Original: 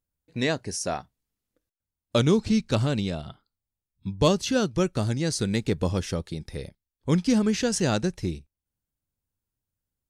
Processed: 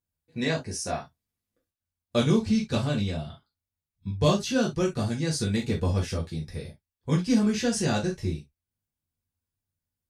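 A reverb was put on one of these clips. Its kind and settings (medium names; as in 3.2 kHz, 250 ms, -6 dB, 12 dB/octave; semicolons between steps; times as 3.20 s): gated-style reverb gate 90 ms falling, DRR -4 dB; trim -7 dB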